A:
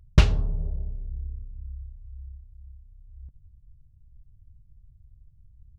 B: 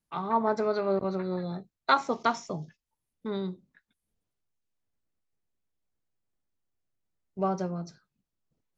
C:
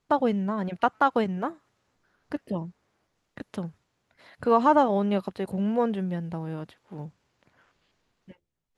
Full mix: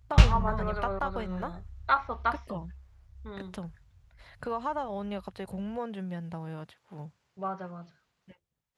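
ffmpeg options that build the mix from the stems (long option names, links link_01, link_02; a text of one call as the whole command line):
ffmpeg -i stem1.wav -i stem2.wav -i stem3.wav -filter_complex "[0:a]flanger=delay=18:depth=4.1:speed=0.37,volume=2.5dB[link_01];[1:a]lowpass=frequency=3700:width=0.5412,lowpass=frequency=3700:width=1.3066,adynamicequalizer=threshold=0.0112:dfrequency=1300:dqfactor=1:tfrequency=1300:tqfactor=1:attack=5:release=100:ratio=0.375:range=3.5:mode=boostabove:tftype=bell,volume=-6dB[link_02];[2:a]acompressor=threshold=-28dB:ratio=3,volume=-1.5dB[link_03];[link_01][link_02][link_03]amix=inputs=3:normalize=0,highpass=44,equalizer=frequency=300:width_type=o:width=1.4:gain=-7.5" out.wav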